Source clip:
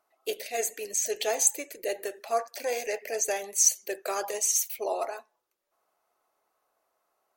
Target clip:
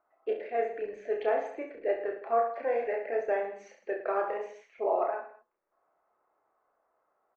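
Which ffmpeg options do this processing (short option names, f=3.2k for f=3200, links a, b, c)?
-filter_complex "[0:a]lowpass=f=1.8k:w=0.5412,lowpass=f=1.8k:w=1.3066,bandreject=f=50:t=h:w=6,bandreject=f=100:t=h:w=6,bandreject=f=150:t=h:w=6,bandreject=f=200:t=h:w=6,asplit=2[a][b];[b]aecho=0:1:30|66|109.2|161|223.2:0.631|0.398|0.251|0.158|0.1[c];[a][c]amix=inputs=2:normalize=0"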